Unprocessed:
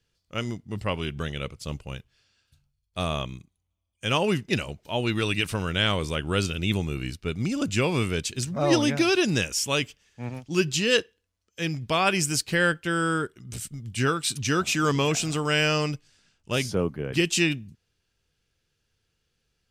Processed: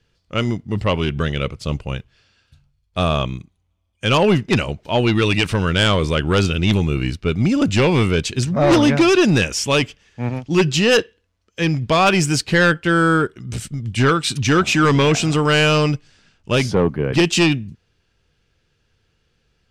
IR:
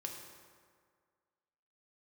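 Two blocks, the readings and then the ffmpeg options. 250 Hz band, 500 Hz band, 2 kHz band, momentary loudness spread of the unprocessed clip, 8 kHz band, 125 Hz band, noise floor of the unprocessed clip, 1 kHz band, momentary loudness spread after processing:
+9.5 dB, +9.0 dB, +7.0 dB, 13 LU, +3.0 dB, +10.0 dB, −77 dBFS, +9.0 dB, 12 LU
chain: -af "aemphasis=mode=reproduction:type=50fm,aeval=exprs='0.376*sin(PI/2*2.24*val(0)/0.376)':channel_layout=same"

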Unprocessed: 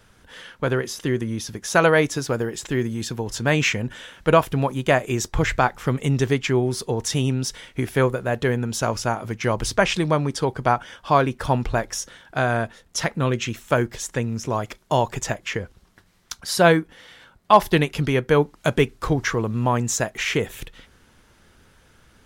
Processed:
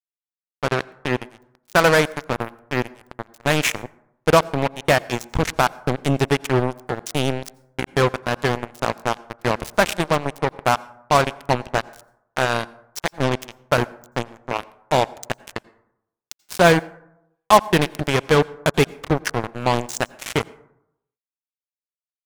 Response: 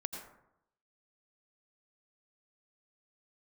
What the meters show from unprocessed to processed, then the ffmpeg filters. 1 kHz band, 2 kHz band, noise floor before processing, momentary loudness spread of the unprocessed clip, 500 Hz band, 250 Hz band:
+1.5 dB, +1.5 dB, −57 dBFS, 10 LU, +0.5 dB, −1.0 dB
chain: -filter_complex "[0:a]acrusher=bits=2:mix=0:aa=0.5,asplit=2[link_01][link_02];[1:a]atrim=start_sample=2205[link_03];[link_02][link_03]afir=irnorm=-1:irlink=0,volume=-16dB[link_04];[link_01][link_04]amix=inputs=2:normalize=0"

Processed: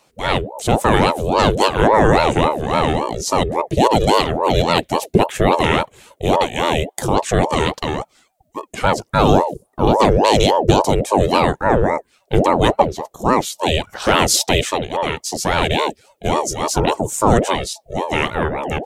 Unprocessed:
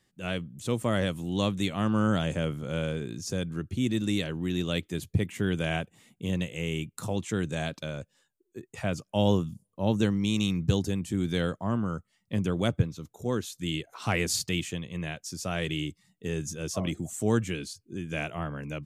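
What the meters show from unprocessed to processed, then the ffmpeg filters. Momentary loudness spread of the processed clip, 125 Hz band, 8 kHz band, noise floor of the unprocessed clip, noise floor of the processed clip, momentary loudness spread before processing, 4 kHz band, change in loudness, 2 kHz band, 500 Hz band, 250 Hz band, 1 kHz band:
8 LU, +8.0 dB, +13.5 dB, −76 dBFS, −63 dBFS, 9 LU, +13.0 dB, +13.0 dB, +13.0 dB, +16.0 dB, +8.5 dB, +23.0 dB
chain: -af "apsyclip=18dB,aeval=exprs='val(0)*sin(2*PI*500*n/s+500*0.55/3.6*sin(2*PI*3.6*n/s))':channel_layout=same,volume=-1.5dB"

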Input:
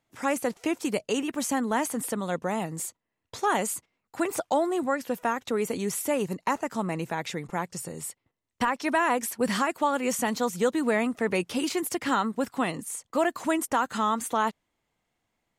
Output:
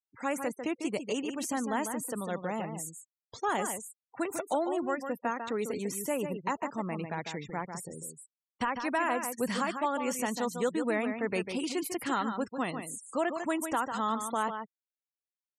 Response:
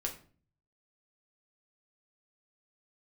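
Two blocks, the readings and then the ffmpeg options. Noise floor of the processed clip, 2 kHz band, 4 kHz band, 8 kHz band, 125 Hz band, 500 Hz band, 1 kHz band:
below −85 dBFS, −5.0 dB, −5.5 dB, −5.5 dB, −4.5 dB, −5.0 dB, −5.0 dB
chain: -af "aecho=1:1:148:0.422,afftfilt=real='re*gte(hypot(re,im),0.0112)':imag='im*gte(hypot(re,im),0.0112)':win_size=1024:overlap=0.75,volume=-5.5dB"

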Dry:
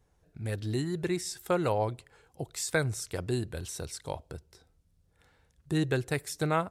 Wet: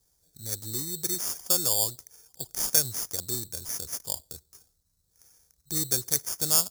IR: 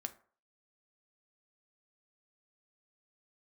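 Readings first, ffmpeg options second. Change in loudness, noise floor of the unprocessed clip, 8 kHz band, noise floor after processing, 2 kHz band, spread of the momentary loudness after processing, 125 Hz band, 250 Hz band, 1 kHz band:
+5.5 dB, −69 dBFS, +13.5 dB, −72 dBFS, −8.5 dB, 13 LU, −8.0 dB, −8.0 dB, −8.0 dB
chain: -af "acrusher=samples=11:mix=1:aa=0.000001,aexciter=amount=14.8:drive=5:freq=4100,volume=-8dB"

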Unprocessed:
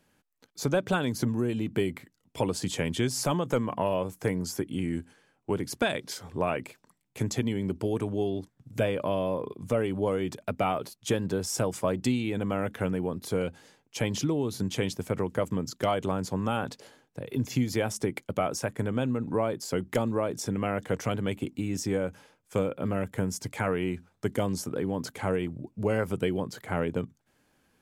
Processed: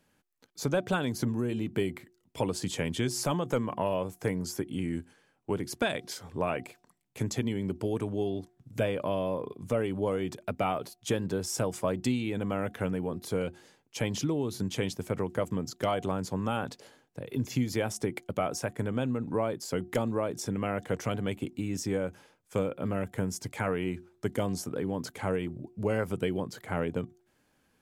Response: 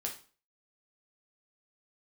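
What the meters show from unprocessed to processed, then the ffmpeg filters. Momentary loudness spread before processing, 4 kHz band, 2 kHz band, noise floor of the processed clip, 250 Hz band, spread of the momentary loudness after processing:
6 LU, −2.0 dB, −2.0 dB, −71 dBFS, −2.0 dB, 6 LU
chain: -af "bandreject=frequency=359.9:width_type=h:width=4,bandreject=frequency=719.8:width_type=h:width=4,volume=-2dB"

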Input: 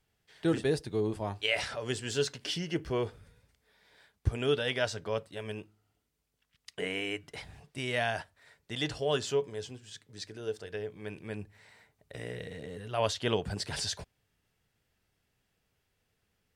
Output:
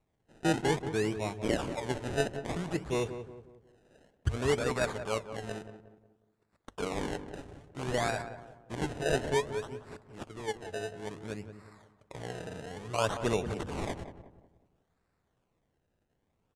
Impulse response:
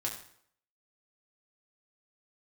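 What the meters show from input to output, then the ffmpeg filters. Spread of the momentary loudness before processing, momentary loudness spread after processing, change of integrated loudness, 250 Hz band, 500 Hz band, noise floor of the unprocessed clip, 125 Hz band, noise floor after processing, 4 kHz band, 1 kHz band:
15 LU, 17 LU, 0.0 dB, +1.5 dB, 0.0 dB, −79 dBFS, +1.0 dB, −78 dBFS, −6.0 dB, +3.5 dB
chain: -filter_complex "[0:a]acrusher=samples=27:mix=1:aa=0.000001:lfo=1:lforange=27:lforate=0.58,lowpass=frequency=9600:width=0.5412,lowpass=frequency=9600:width=1.3066,equalizer=frequency=4800:width=3.1:gain=-4,bandreject=frequency=50:width_type=h:width=6,bandreject=frequency=100:width_type=h:width=6,asplit=2[link_01][link_02];[link_02]adelay=181,lowpass=frequency=1300:poles=1,volume=-9.5dB,asplit=2[link_03][link_04];[link_04]adelay=181,lowpass=frequency=1300:poles=1,volume=0.42,asplit=2[link_05][link_06];[link_06]adelay=181,lowpass=frequency=1300:poles=1,volume=0.42,asplit=2[link_07][link_08];[link_08]adelay=181,lowpass=frequency=1300:poles=1,volume=0.42,asplit=2[link_09][link_10];[link_10]adelay=181,lowpass=frequency=1300:poles=1,volume=0.42[link_11];[link_01][link_03][link_05][link_07][link_09][link_11]amix=inputs=6:normalize=0"

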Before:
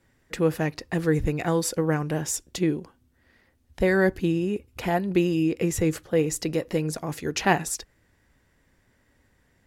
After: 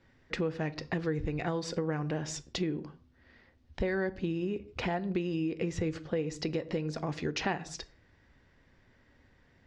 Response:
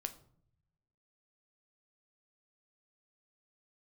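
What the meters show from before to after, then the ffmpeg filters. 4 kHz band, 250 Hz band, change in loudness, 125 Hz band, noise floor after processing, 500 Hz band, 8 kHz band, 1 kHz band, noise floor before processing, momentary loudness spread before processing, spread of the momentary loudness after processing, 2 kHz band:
−5.0 dB, −8.5 dB, −8.5 dB, −7.5 dB, −65 dBFS, −8.5 dB, −14.0 dB, −9.0 dB, −66 dBFS, 7 LU, 5 LU, −8.5 dB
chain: -filter_complex "[0:a]lowpass=frequency=5300:width=0.5412,lowpass=frequency=5300:width=1.3066,asplit=2[link_01][link_02];[1:a]atrim=start_sample=2205,afade=type=out:start_time=0.22:duration=0.01,atrim=end_sample=10143[link_03];[link_02][link_03]afir=irnorm=-1:irlink=0,volume=0.5dB[link_04];[link_01][link_04]amix=inputs=2:normalize=0,acompressor=threshold=-26dB:ratio=4,volume=-4.5dB"

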